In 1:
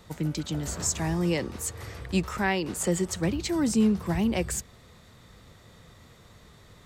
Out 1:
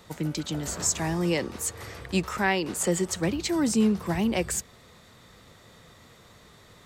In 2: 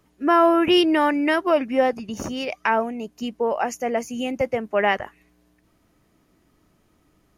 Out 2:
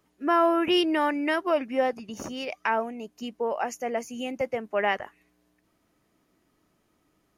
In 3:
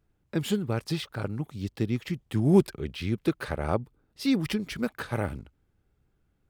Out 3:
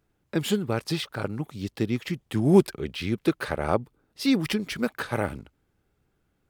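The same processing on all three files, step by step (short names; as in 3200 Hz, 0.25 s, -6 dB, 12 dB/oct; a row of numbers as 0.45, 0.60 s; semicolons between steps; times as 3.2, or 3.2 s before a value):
low shelf 140 Hz -9 dB; AAC 192 kbps 48000 Hz; match loudness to -27 LUFS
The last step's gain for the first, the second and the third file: +2.5, -5.0, +4.5 dB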